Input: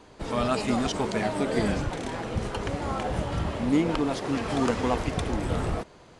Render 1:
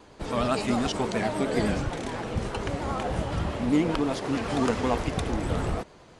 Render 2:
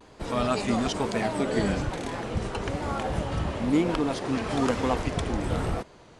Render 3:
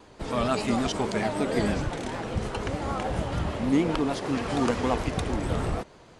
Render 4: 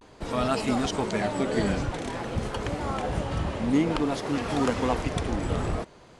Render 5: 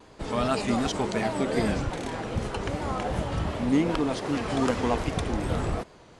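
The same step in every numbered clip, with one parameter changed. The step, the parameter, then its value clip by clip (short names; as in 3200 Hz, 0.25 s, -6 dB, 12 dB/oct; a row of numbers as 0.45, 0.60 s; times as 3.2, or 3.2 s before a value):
vibrato, rate: 9.7, 1.1, 6.6, 0.5, 2.6 Hz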